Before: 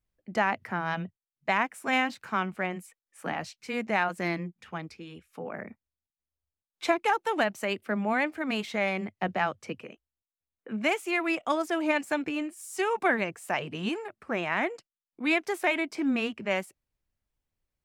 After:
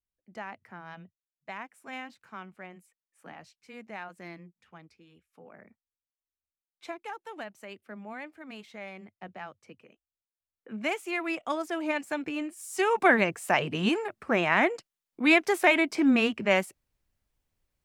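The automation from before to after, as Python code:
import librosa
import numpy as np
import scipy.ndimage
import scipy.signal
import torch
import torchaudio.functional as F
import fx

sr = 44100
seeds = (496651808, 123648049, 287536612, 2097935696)

y = fx.gain(x, sr, db=fx.line((9.73, -14.0), (10.89, -3.5), (12.13, -3.5), (13.17, 5.0)))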